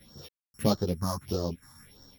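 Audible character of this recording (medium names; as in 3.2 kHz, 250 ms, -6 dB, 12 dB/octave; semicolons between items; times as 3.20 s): a buzz of ramps at a fixed pitch in blocks of 8 samples; phasing stages 4, 1.6 Hz, lowest notch 430–2300 Hz; random-step tremolo 3.7 Hz, depth 100%; a shimmering, thickened sound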